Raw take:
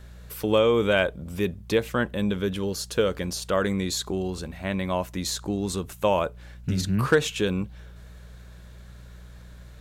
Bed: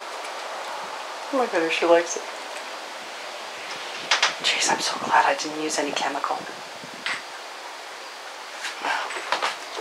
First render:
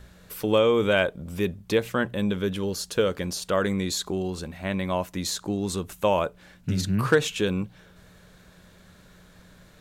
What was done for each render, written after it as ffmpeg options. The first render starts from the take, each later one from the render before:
-af "bandreject=f=60:t=h:w=4,bandreject=f=120:t=h:w=4"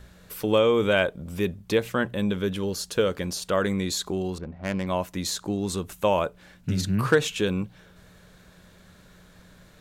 -filter_complex "[0:a]asettb=1/sr,asplit=3[a][b][c];[a]atrim=end=4.384[d];[b]atrim=start=4.38:end=4.87,asetpts=PTS-STARTPTS,afade=t=in:d=0.004:c=qsin,afade=t=out:st=0.486:d=0.004:c=qsin,adynamicsmooth=sensitivity=3:basefreq=510[e];[c]atrim=start=4.866[f];[d][e]acrossfade=d=0.004:c1=hsin:c2=qsin[g];[g][f]acrossfade=d=0.004:c1=qsin:c2=hsin"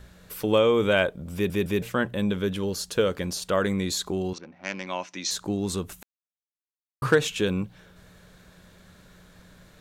-filter_complex "[0:a]asettb=1/sr,asplit=3[a][b][c];[a]atrim=end=4.334[d];[b]atrim=start=4.33:end=5.31,asetpts=PTS-STARTPTS,afade=t=in:d=0.004:c=qsin,afade=t=out:st=0.976:d=0.004:c=qsin,highpass=340,equalizer=f=440:t=q:w=4:g=-8,equalizer=f=640:t=q:w=4:g=-6,equalizer=f=1.1k:t=q:w=4:g=-3,equalizer=f=2.4k:t=q:w=4:g=5,equalizer=f=5.9k:t=q:w=4:g=10,lowpass=f=6.3k:w=0.5412,lowpass=f=6.3k:w=1.3066[e];[c]atrim=start=5.306[f];[d][e]acrossfade=d=0.004:c1=hsin:c2=qsin[g];[g][f]acrossfade=d=0.004:c1=qsin:c2=hsin,asplit=6[h][i][j][k][l][m];[h]atrim=end=1.502[n];[i]atrim=start=1.338:end=1.502[o];[j]atrim=start=1.338:end=1.502[p];[k]atrim=start=1.818:end=6.03,asetpts=PTS-STARTPTS,afade=t=out:st=4.208:d=0.004:c=hsin[q];[l]atrim=start=6.03:end=7.02,asetpts=PTS-STARTPTS,volume=0[r];[m]atrim=start=7.02,asetpts=PTS-STARTPTS,afade=t=in:d=0.004:c=hsin[s];[n][o]acrossfade=d=0.004:c1=hsin:c2=hsin[t];[t][p]acrossfade=d=0.004:c1=hsin:c2=hsin[u];[q][r][s]concat=n=3:v=0:a=1[v];[u][v]acrossfade=d=0.004:c1=hsin:c2=hsin"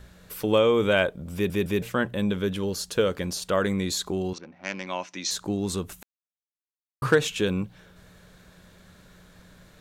-af anull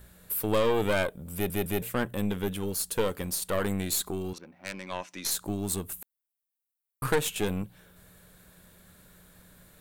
-af "aeval=exprs='(tanh(8.91*val(0)+0.75)-tanh(0.75))/8.91':c=same,aexciter=amount=4:drive=6.4:freq=8.2k"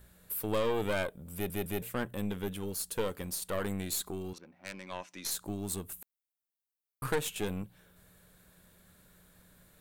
-af "volume=-5.5dB"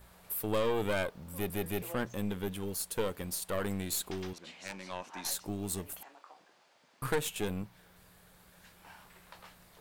-filter_complex "[1:a]volume=-29.5dB[a];[0:a][a]amix=inputs=2:normalize=0"

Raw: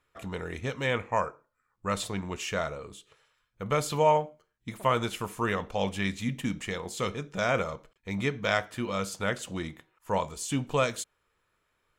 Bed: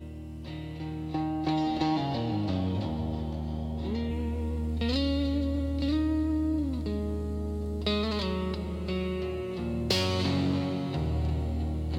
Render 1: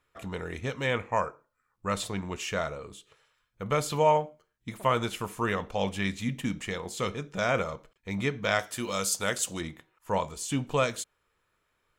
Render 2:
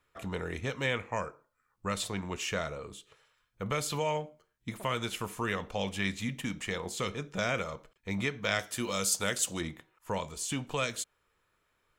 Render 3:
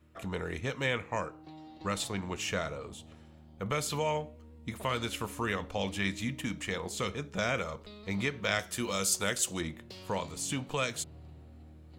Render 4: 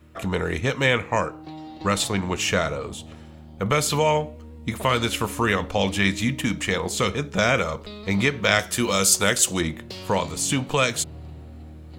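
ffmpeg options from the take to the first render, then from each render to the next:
-filter_complex "[0:a]asettb=1/sr,asplit=3[a][b][c];[a]atrim=end=8.594[d];[b]atrim=start=8.59:end=9.61,asetpts=PTS-STARTPTS,afade=t=in:d=0.004:c=qsin,afade=t=out:st=1.016:d=0.004:c=qsin,bass=f=250:g=-4,treble=f=4k:g=13[e];[c]atrim=start=9.606[f];[d][e]acrossfade=d=0.004:c1=hsin:c2=qsin[g];[g][f]acrossfade=d=0.004:c1=qsin:c2=hsin"
-filter_complex "[0:a]acrossover=split=540|1600[a][b][c];[a]alimiter=level_in=3dB:limit=-24dB:level=0:latency=1:release=420,volume=-3dB[d];[b]acompressor=threshold=-38dB:ratio=6[e];[d][e][c]amix=inputs=3:normalize=0"
-filter_complex "[1:a]volume=-21.5dB[a];[0:a][a]amix=inputs=2:normalize=0"
-af "volume=11dB"

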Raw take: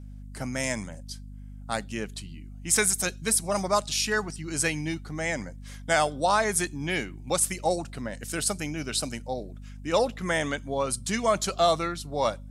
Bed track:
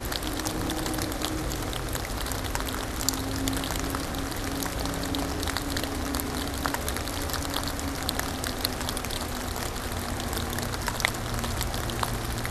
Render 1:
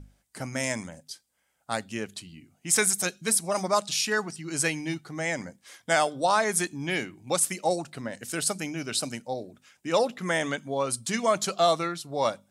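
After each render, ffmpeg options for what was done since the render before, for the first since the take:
-af "bandreject=f=50:t=h:w=6,bandreject=f=100:t=h:w=6,bandreject=f=150:t=h:w=6,bandreject=f=200:t=h:w=6,bandreject=f=250:t=h:w=6"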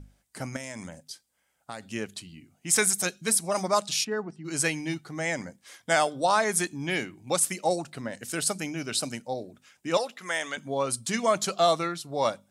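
-filter_complex "[0:a]asettb=1/sr,asplit=3[a][b][c];[a]atrim=end=0.564[d];[b]atrim=start=0.56:end=1.84,asetpts=PTS-STARTPTS,afade=t=in:d=0.004:c=qsin,afade=t=out:st=1.276:d=0.004:c=qsin,acompressor=threshold=-33dB:ratio=6:attack=3.2:release=140:knee=1:detection=peak[e];[c]atrim=start=1.836[f];[d][e]acrossfade=d=0.004:c1=hsin:c2=qsin[g];[g][f]acrossfade=d=0.004:c1=qsin:c2=hsin,asplit=3[h][i][j];[h]afade=t=out:st=4.03:d=0.02[k];[i]bandpass=f=310:t=q:w=0.59,afade=t=in:st=4.03:d=0.02,afade=t=out:st=4.44:d=0.02[l];[j]afade=t=in:st=4.44:d=0.02[m];[k][l][m]amix=inputs=3:normalize=0,asettb=1/sr,asplit=3[n][o][p];[n]atrim=end=9.974[q];[o]atrim=start=9.97:end=10.57,asetpts=PTS-STARTPTS,afade=t=in:d=0.004:c=qsin,afade=t=out:st=0.596:d=0.004:c=qsin,highpass=f=1.1k:p=1[r];[p]atrim=start=10.566[s];[q][r]acrossfade=d=0.004:c1=hsin:c2=qsin[t];[t][s]acrossfade=d=0.004:c1=qsin:c2=hsin"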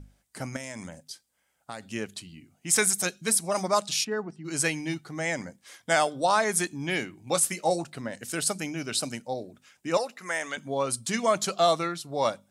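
-filter_complex "[0:a]asettb=1/sr,asplit=3[a][b][c];[a]atrim=end=7.244[d];[b]atrim=start=7.24:end=7.84,asetpts=PTS-STARTPTS,afade=t=in:d=0.004:c=qsin,afade=t=out:st=0.596:d=0.004:c=qsin,asplit=2[e][f];[f]adelay=18,volume=-9.5dB[g];[e][g]amix=inputs=2:normalize=0,atrim=end_sample=26460[h];[c]atrim=start=7.836[i];[d][h]acrossfade=d=0.004:c1=hsin:c2=qsin[j];[j][i]acrossfade=d=0.004:c1=qsin:c2=hsin,asettb=1/sr,asplit=3[k][l][m];[k]atrim=end=9.904[n];[l]atrim=start=9.9:end=10.5,asetpts=PTS-STARTPTS,afade=t=in:d=0.004:c=qsin,afade=t=out:st=0.596:d=0.004:c=qsin,equalizer=f=3.3k:t=o:w=0.26:g=-12.5[o];[m]atrim=start=10.496[p];[n][o]acrossfade=d=0.004:c1=hsin:c2=qsin[q];[q][p]acrossfade=d=0.004:c1=qsin:c2=hsin"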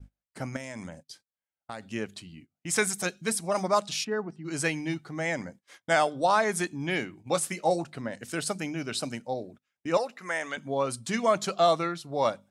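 -af "agate=range=-24dB:threshold=-48dB:ratio=16:detection=peak,aemphasis=mode=reproduction:type=cd"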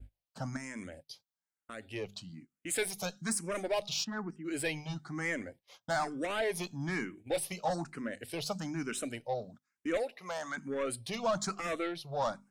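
-filter_complex "[0:a]asoftclip=type=tanh:threshold=-24dB,asplit=2[a][b];[b]afreqshift=1.1[c];[a][c]amix=inputs=2:normalize=1"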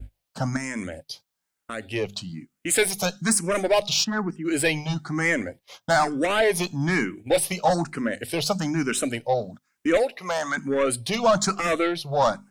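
-af "volume=12dB"

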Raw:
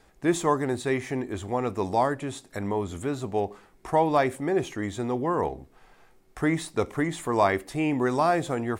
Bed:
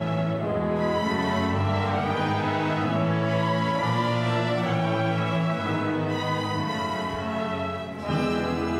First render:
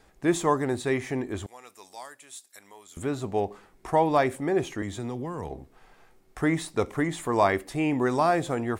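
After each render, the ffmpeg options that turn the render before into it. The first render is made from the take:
-filter_complex "[0:a]asettb=1/sr,asplit=3[a][b][c];[a]atrim=end=1.464[d];[b]atrim=start=1.46:end=2.97,asetpts=PTS-STARTPTS,afade=t=in:d=0.004:c=qsin,afade=t=out:st=1.506:d=0.004:c=qsin,aderivative[e];[c]atrim=start=2.966[f];[d][e]acrossfade=d=0.004:c1=hsin:c2=qsin[g];[g][f]acrossfade=d=0.004:c1=qsin:c2=hsin,asettb=1/sr,asplit=3[h][i][j];[h]atrim=end=4.824[k];[i]atrim=start=4.82:end=5.51,asetpts=PTS-STARTPTS,afade=t=in:d=0.004:c=qsin,afade=t=out:st=0.686:d=0.004:c=qsin,acrossover=split=190|3000[l][m][n];[m]acompressor=threshold=-33dB:ratio=6:attack=3.2:release=140:knee=2.83:detection=peak[o];[l][o][n]amix=inputs=3:normalize=0[p];[j]atrim=start=5.506[q];[k][p]acrossfade=d=0.004:c1=hsin:c2=qsin[r];[r][q]acrossfade=d=0.004:c1=qsin:c2=hsin"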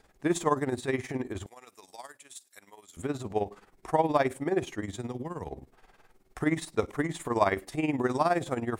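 -af "tremolo=f=19:d=0.74"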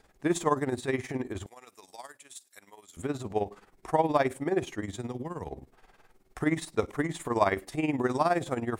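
-af anull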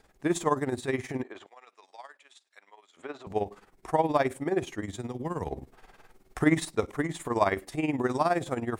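-filter_complex "[0:a]asettb=1/sr,asplit=3[a][b][c];[a]atrim=end=1.234[d];[b]atrim=start=1.23:end=3.27,asetpts=PTS-STARTPTS,afade=t=in:d=0.004:c=qsin,afade=t=out:st=2.036:d=0.004:c=qsin,highpass=540,lowpass=3.4k[e];[c]atrim=start=3.266[f];[d][e]acrossfade=d=0.004:c1=hsin:c2=qsin[g];[g][f]acrossfade=d=0.004:c1=qsin:c2=hsin,asplit=3[h][i][j];[h]atrim=end=5.232[k];[i]atrim=start=5.228:end=6.722,asetpts=PTS-STARTPTS,volume=4.5dB[l];[j]atrim=start=6.718[m];[k][l]acrossfade=d=0.004:c1=hsin:c2=hsin[n];[n][m]acrossfade=d=0.004:c1=hsin:c2=hsin"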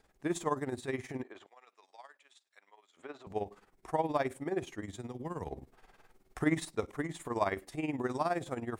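-af "volume=-6.5dB"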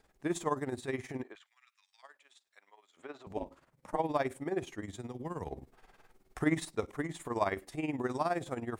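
-filter_complex "[0:a]asettb=1/sr,asplit=3[a][b][c];[a]atrim=end=1.354[d];[b]atrim=start=1.35:end=2.03,asetpts=PTS-STARTPTS,afade=t=in:d=0.004:c=qsin,afade=t=out:st=0.676:d=0.004:c=qsin,highpass=f=1.5k:w=0.5412,highpass=f=1.5k:w=1.3066[e];[c]atrim=start=2.026[f];[d][e]acrossfade=d=0.004:c1=hsin:c2=qsin[g];[g][f]acrossfade=d=0.004:c1=qsin:c2=hsin,asplit=3[h][i][j];[h]afade=t=out:st=3.36:d=0.02[k];[i]aeval=exprs='val(0)*sin(2*PI*140*n/s)':c=same,afade=t=in:st=3.36:d=0.02,afade=t=out:st=3.98:d=0.02[l];[j]afade=t=in:st=3.98:d=0.02[m];[k][l][m]amix=inputs=3:normalize=0"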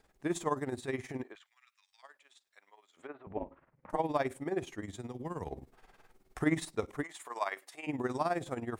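-filter_complex "[0:a]asettb=1/sr,asplit=3[a][b][c];[a]atrim=end=3.074[d];[b]atrim=start=3.07:end=3.9,asetpts=PTS-STARTPTS,afade=t=in:d=0.004:c=qsin,afade=t=out:st=0.826:d=0.004:c=qsin,lowpass=f=2.3k:w=0.5412,lowpass=f=2.3k:w=1.3066[e];[c]atrim=start=3.896[f];[d][e]acrossfade=d=0.004:c1=hsin:c2=qsin[g];[g][f]acrossfade=d=0.004:c1=qsin:c2=hsin,asettb=1/sr,asplit=3[h][i][j];[h]atrim=end=7.034[k];[i]atrim=start=7.03:end=7.87,asetpts=PTS-STARTPTS,afade=t=in:d=0.004:c=qsin,afade=t=out:st=0.836:d=0.004:c=qsin,highpass=810[l];[j]atrim=start=7.866[m];[k][l]acrossfade=d=0.004:c1=hsin:c2=qsin[n];[n][m]acrossfade=d=0.004:c1=qsin:c2=hsin"

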